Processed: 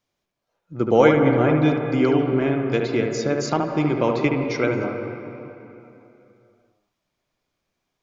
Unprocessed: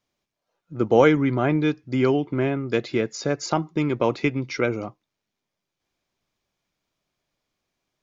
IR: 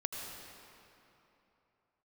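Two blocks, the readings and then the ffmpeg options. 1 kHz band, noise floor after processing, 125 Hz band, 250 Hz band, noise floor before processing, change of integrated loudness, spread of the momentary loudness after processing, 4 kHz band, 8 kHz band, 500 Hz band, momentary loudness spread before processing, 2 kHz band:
+2.5 dB, -79 dBFS, +2.5 dB, +2.5 dB, -84 dBFS, +2.5 dB, 17 LU, +0.5 dB, n/a, +2.5 dB, 9 LU, +1.5 dB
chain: -filter_complex "[0:a]asplit=2[a][b];[1:a]atrim=start_sample=2205,lowpass=2.5k,adelay=73[c];[b][c]afir=irnorm=-1:irlink=0,volume=-3dB[d];[a][d]amix=inputs=2:normalize=0"

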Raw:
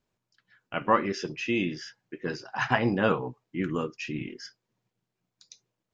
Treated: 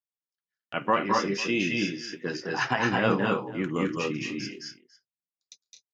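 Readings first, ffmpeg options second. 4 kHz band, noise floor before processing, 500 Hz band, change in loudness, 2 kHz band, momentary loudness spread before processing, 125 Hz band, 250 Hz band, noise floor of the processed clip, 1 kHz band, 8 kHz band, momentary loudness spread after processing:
+5.0 dB, -85 dBFS, +1.0 dB, +1.5 dB, +3.0 dB, 15 LU, +0.5 dB, +2.0 dB, under -85 dBFS, +1.5 dB, n/a, 11 LU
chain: -filter_complex "[0:a]agate=range=-31dB:threshold=-50dB:ratio=16:detection=peak,highpass=120,highshelf=f=4k:g=6,alimiter=limit=-10.5dB:level=0:latency=1:release=427,asplit=2[a][b];[b]aecho=0:1:212|222|247|499:0.596|0.631|0.422|0.106[c];[a][c]amix=inputs=2:normalize=0"

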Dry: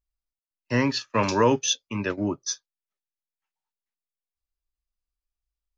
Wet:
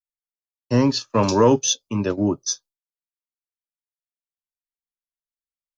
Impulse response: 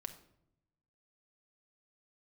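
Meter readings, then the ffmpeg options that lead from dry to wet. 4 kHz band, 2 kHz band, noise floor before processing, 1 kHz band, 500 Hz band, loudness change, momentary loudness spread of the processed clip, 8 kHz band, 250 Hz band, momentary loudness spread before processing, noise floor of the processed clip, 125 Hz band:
+2.5 dB, -5.0 dB, under -85 dBFS, +2.5 dB, +5.5 dB, +4.5 dB, 9 LU, n/a, +6.0 dB, 10 LU, under -85 dBFS, +6.0 dB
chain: -af "agate=range=-33dB:threshold=-46dB:ratio=3:detection=peak,equalizer=f=2k:w=1.3:g=-15,acontrast=69"

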